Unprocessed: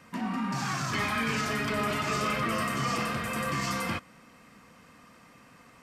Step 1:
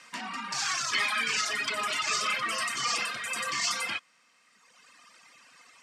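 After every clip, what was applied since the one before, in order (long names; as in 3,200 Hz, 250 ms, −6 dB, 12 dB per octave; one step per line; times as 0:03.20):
meter weighting curve ITU-R 468
reverb reduction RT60 1.7 s
high-shelf EQ 8,000 Hz −5.5 dB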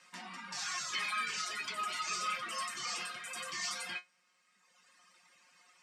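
tuned comb filter 180 Hz, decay 0.15 s, harmonics all, mix 90%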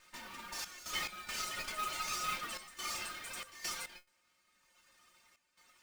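lower of the sound and its delayed copy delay 3.3 ms
noise that follows the level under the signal 13 dB
gate pattern "xxx.x.xxxxxx." 70 BPM −12 dB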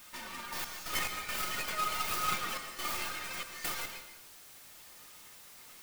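stylus tracing distortion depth 0.26 ms
background noise white −59 dBFS
dense smooth reverb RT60 0.76 s, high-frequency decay 0.8×, pre-delay 110 ms, DRR 7.5 dB
level +4.5 dB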